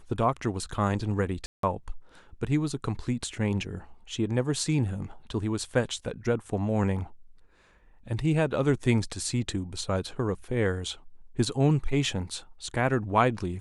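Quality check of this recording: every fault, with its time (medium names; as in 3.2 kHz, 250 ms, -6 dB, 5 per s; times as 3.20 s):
1.46–1.63 s: dropout 173 ms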